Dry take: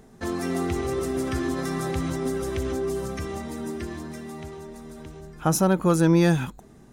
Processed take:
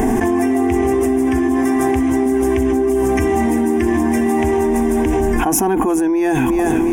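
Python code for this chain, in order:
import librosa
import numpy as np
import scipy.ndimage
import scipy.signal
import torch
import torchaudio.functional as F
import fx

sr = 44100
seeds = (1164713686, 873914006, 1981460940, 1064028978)

p1 = fx.fixed_phaser(x, sr, hz=850.0, stages=8)
p2 = fx.small_body(p1, sr, hz=(250.0, 700.0, 1100.0), ring_ms=25, db=9)
p3 = p2 + fx.echo_feedback(p2, sr, ms=354, feedback_pct=46, wet_db=-20.5, dry=0)
y = fx.env_flatten(p3, sr, amount_pct=100)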